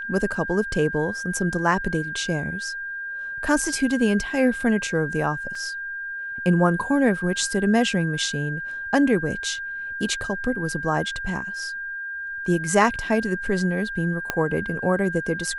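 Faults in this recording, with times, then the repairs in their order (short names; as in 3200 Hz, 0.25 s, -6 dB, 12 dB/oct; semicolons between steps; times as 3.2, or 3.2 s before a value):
tone 1600 Hz -29 dBFS
5.55 gap 3.6 ms
14.3 pop -8 dBFS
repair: de-click; notch 1600 Hz, Q 30; interpolate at 5.55, 3.6 ms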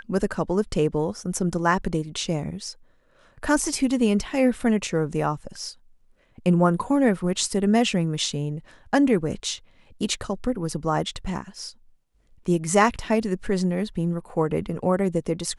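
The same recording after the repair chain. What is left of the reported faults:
14.3 pop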